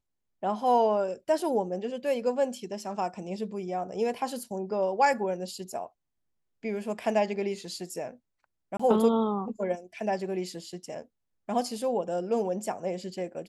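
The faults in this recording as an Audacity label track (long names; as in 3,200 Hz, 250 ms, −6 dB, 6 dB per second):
8.770000	8.790000	drop-out 25 ms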